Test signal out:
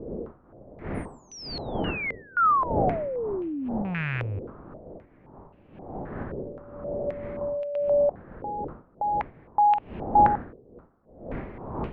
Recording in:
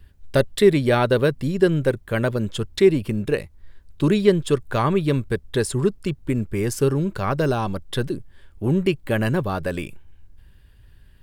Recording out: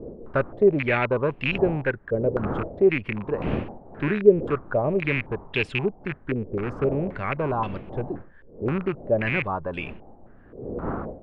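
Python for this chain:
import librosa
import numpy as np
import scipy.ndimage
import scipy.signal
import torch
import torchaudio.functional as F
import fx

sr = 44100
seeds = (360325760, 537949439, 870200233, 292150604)

y = fx.rattle_buzz(x, sr, strikes_db=-24.0, level_db=-14.0)
y = fx.dmg_wind(y, sr, seeds[0], corner_hz=360.0, level_db=-31.0)
y = fx.filter_held_lowpass(y, sr, hz=3.8, low_hz=480.0, high_hz=2700.0)
y = y * 10.0 ** (-7.0 / 20.0)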